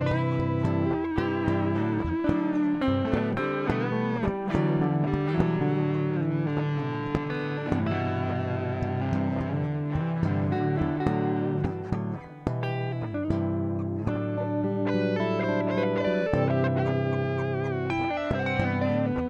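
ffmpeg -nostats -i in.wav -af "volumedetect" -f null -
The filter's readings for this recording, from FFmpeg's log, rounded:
mean_volume: -26.5 dB
max_volume: -10.7 dB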